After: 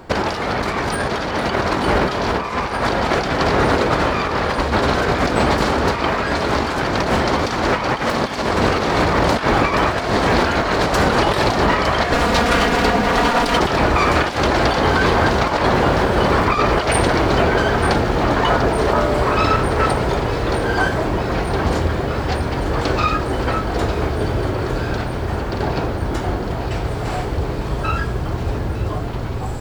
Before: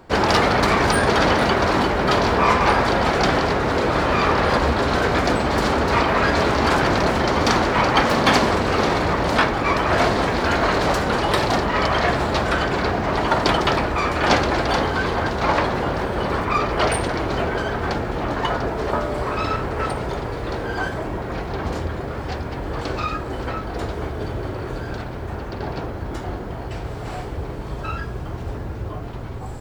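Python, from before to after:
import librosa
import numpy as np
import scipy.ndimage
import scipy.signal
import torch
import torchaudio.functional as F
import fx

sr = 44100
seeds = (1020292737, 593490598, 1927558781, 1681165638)

y = fx.lower_of_two(x, sr, delay_ms=4.2, at=(12.13, 13.59))
y = fx.over_compress(y, sr, threshold_db=-21.0, ratio=-0.5)
y = fx.echo_wet_highpass(y, sr, ms=906, feedback_pct=81, hz=2900.0, wet_db=-11.5)
y = y * 10.0 ** (5.0 / 20.0)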